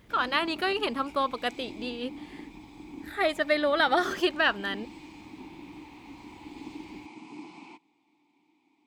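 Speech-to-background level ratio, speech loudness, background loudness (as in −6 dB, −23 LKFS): 17.5 dB, −28.0 LKFS, −45.5 LKFS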